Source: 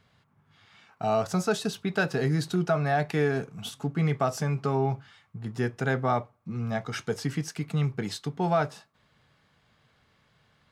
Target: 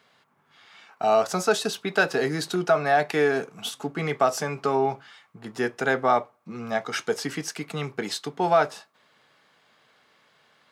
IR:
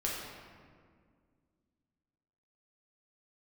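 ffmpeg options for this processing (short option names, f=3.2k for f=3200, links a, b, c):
-af "highpass=330,volume=6dB"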